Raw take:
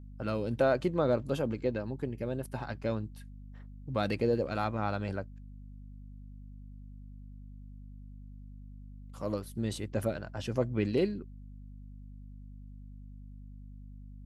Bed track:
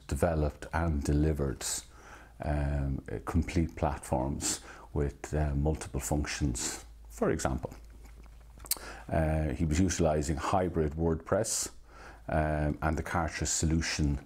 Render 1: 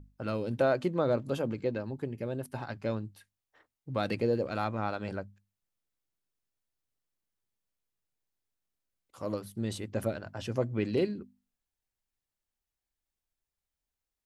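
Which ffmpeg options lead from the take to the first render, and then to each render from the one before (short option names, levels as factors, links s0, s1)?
-af "bandreject=f=50:t=h:w=6,bandreject=f=100:t=h:w=6,bandreject=f=150:t=h:w=6,bandreject=f=200:t=h:w=6,bandreject=f=250:t=h:w=6"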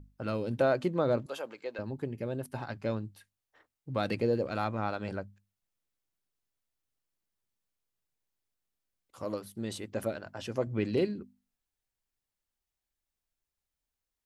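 -filter_complex "[0:a]asettb=1/sr,asplit=3[s0][s1][s2];[s0]atrim=end=1.264[s3];[s1]atrim=start=1.26:end=1.79,asetpts=PTS-STARTPTS,afade=t=in:d=0.004:c=qsin,afade=t=out:st=0.526:d=0.004:c=qsin,highpass=670[s4];[s2]atrim=start=1.786[s5];[s3][s4]acrossfade=d=0.004:c1=hsin:c2=qsin[s6];[s6][s5]acrossfade=d=0.004:c1=qsin:c2=hsin,asettb=1/sr,asplit=3[s7][s8][s9];[s7]atrim=end=9.244[s10];[s8]atrim=start=9.24:end=10.67,asetpts=PTS-STARTPTS,afade=t=in:d=0.004:c=qsin,afade=t=out:st=1.426:d=0.004:c=qsin,equalizer=f=86:t=o:w=2.3:g=-7[s11];[s9]atrim=start=10.666[s12];[s10][s11]acrossfade=d=0.004:c1=hsin:c2=qsin[s13];[s13][s12]acrossfade=d=0.004:c1=qsin:c2=hsin"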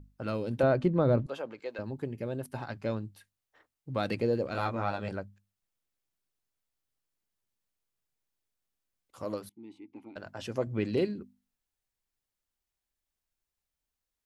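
-filter_complex "[0:a]asettb=1/sr,asplit=3[s0][s1][s2];[s0]atrim=end=0.634[s3];[s1]atrim=start=0.63:end=1.6,asetpts=PTS-STARTPTS,afade=t=in:d=0.004:c=qsin,afade=t=out:st=0.966:d=0.004:c=qsin,aemphasis=mode=reproduction:type=bsi[s4];[s2]atrim=start=1.596[s5];[s3][s4]acrossfade=d=0.004:c1=hsin:c2=qsin[s6];[s6][s5]acrossfade=d=0.004:c1=qsin:c2=hsin,asettb=1/sr,asplit=3[s7][s8][s9];[s7]atrim=end=4.524[s10];[s8]atrim=start=4.52:end=5.09,asetpts=PTS-STARTPTS,afade=t=in:d=0.004:c=qsin,afade=t=out:st=0.566:d=0.004:c=qsin,asplit=2[s11][s12];[s12]adelay=21,volume=0.631[s13];[s11][s13]amix=inputs=2:normalize=0,atrim=end_sample=25137[s14];[s9]atrim=start=5.086[s15];[s10][s14]acrossfade=d=0.004:c1=hsin:c2=qsin[s16];[s16][s15]acrossfade=d=0.004:c1=qsin:c2=hsin,asettb=1/sr,asplit=3[s17][s18][s19];[s17]atrim=end=9.494[s20];[s18]atrim=start=9.49:end=10.16,asetpts=PTS-STARTPTS,afade=t=in:d=0.004:c=qsin,afade=t=out:st=0.666:d=0.004:c=qsin,asplit=3[s21][s22][s23];[s21]bandpass=f=300:t=q:w=8,volume=1[s24];[s22]bandpass=f=870:t=q:w=8,volume=0.501[s25];[s23]bandpass=f=2240:t=q:w=8,volume=0.355[s26];[s24][s25][s26]amix=inputs=3:normalize=0[s27];[s19]atrim=start=10.156[s28];[s20][s27]acrossfade=d=0.004:c1=hsin:c2=qsin[s29];[s29][s28]acrossfade=d=0.004:c1=qsin:c2=hsin"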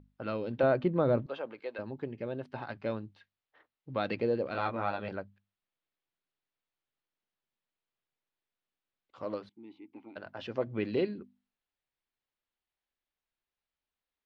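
-af "lowpass=f=4000:w=0.5412,lowpass=f=4000:w=1.3066,lowshelf=f=140:g=-10.5"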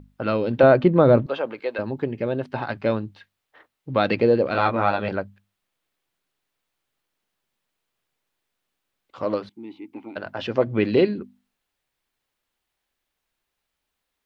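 -af "volume=3.98"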